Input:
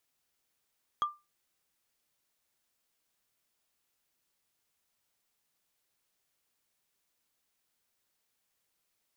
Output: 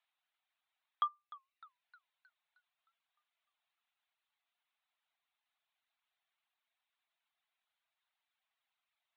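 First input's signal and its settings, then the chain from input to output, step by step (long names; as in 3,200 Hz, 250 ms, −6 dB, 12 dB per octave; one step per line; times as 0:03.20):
struck wood, lowest mode 1,190 Hz, decay 0.24 s, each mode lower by 12 dB, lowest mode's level −22.5 dB
Chebyshev band-pass filter 680–3,800 Hz, order 4
reverb reduction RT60 0.89 s
feedback echo with a swinging delay time 307 ms, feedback 51%, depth 179 cents, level −18.5 dB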